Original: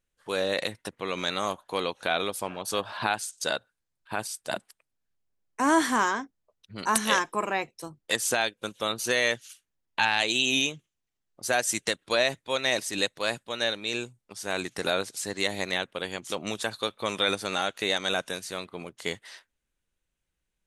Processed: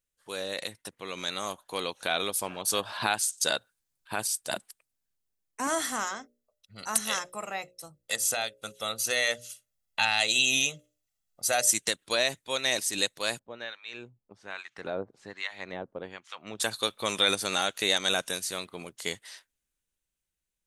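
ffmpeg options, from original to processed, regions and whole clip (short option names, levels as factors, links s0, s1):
-filter_complex "[0:a]asettb=1/sr,asplit=3[s0][s1][s2];[s0]atrim=end=5.674[s3];[s1]atrim=start=5.67:end=11.71,asetpts=PTS-STARTPTS,afade=t=in:d=0.004:c=qsin,afade=t=out:st=6.036:d=0.004:c=qsin,bandreject=f=60:t=h:w=6,bandreject=f=120:t=h:w=6,bandreject=f=180:t=h:w=6,bandreject=f=240:t=h:w=6,bandreject=f=300:t=h:w=6,bandreject=f=360:t=h:w=6,bandreject=f=420:t=h:w=6,bandreject=f=480:t=h:w=6,bandreject=f=540:t=h:w=6,bandreject=f=600:t=h:w=6,aecho=1:1:1.5:0.52,atrim=end_sample=266364[s4];[s2]atrim=start=11.706[s5];[s3][s4]acrossfade=d=0.004:c1=hsin:c2=qsin[s6];[s6][s5]acrossfade=d=0.004:c1=qsin:c2=hsin,asettb=1/sr,asplit=3[s7][s8][s9];[s7]atrim=end=13.394[s10];[s8]atrim=start=13.39:end=16.6,asetpts=PTS-STARTPTS,afade=t=in:d=0.004:c=qsin,afade=t=out:st=3.206:d=0.004:c=qsin,lowpass=1900,acrossover=split=960[s11][s12];[s11]aeval=exprs='val(0)*(1-1/2+1/2*cos(2*PI*1.2*n/s))':c=same[s13];[s12]aeval=exprs='val(0)*(1-1/2-1/2*cos(2*PI*1.2*n/s))':c=same[s14];[s13][s14]amix=inputs=2:normalize=0[s15];[s9]atrim=start=16.596[s16];[s10][s15]acrossfade=d=0.004:c1=hsin:c2=qsin[s17];[s17][s16]acrossfade=d=0.004:c1=qsin:c2=hsin,highshelf=f=4500:g=11.5,dynaudnorm=f=290:g=13:m=3.76,volume=0.376"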